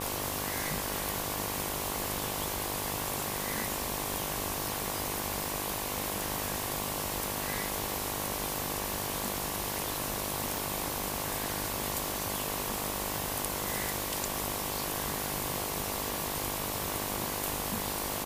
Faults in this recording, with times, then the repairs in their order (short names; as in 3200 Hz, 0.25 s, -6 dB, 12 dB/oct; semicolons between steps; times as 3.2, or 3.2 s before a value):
buzz 50 Hz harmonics 23 -39 dBFS
crackle 47/s -38 dBFS
6.63 pop
10.57 pop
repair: de-click; de-hum 50 Hz, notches 23